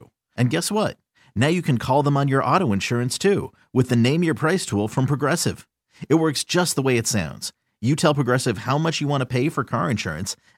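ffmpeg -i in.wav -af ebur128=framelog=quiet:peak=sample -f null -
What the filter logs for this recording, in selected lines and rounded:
Integrated loudness:
  I:         -21.4 LUFS
  Threshold: -31.8 LUFS
Loudness range:
  LRA:         1.8 LU
  Threshold: -41.5 LUFS
  LRA low:   -22.4 LUFS
  LRA high:  -20.5 LUFS
Sample peak:
  Peak:       -4.5 dBFS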